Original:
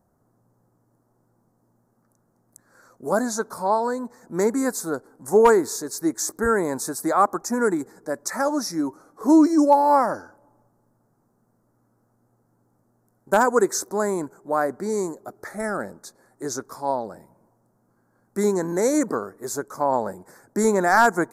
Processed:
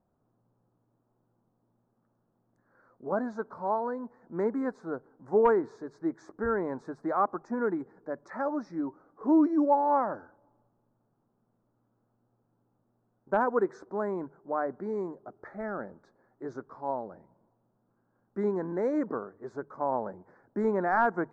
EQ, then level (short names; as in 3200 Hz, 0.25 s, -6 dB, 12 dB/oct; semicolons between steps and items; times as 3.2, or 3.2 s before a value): LPF 1700 Hz 12 dB/oct; air absorption 74 m; notches 50/100/150 Hz; -7.5 dB